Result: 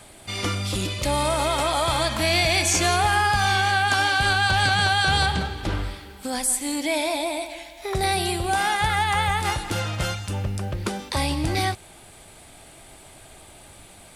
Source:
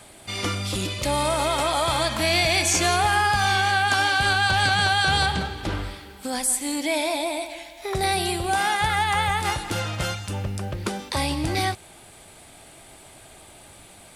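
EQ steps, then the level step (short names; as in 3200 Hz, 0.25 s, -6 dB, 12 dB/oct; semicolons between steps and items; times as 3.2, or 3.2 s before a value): low shelf 63 Hz +6.5 dB; 0.0 dB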